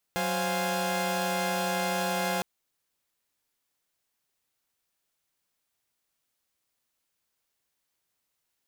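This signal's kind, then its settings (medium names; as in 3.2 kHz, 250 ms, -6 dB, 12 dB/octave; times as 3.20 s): chord F#3/C5/F5/G#5 saw, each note -30 dBFS 2.26 s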